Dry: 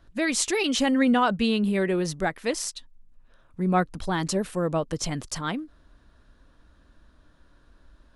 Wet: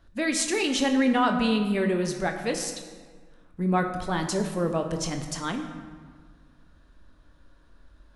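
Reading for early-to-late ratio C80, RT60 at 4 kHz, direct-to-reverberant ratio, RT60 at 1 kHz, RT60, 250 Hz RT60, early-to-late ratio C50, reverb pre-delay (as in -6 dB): 8.5 dB, 1.0 s, 4.5 dB, 1.7 s, 1.6 s, 2.0 s, 7.0 dB, 23 ms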